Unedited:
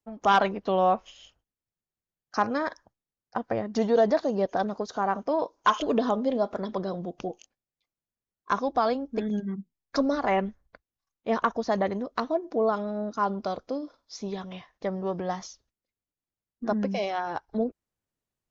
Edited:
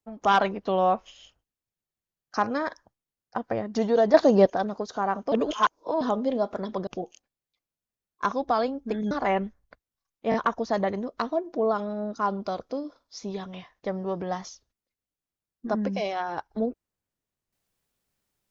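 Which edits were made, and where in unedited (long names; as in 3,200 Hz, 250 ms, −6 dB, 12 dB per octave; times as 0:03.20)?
0:04.14–0:04.50: clip gain +8.5 dB
0:05.32–0:06.01: reverse
0:06.87–0:07.14: remove
0:09.38–0:10.13: remove
0:11.32: stutter 0.02 s, 3 plays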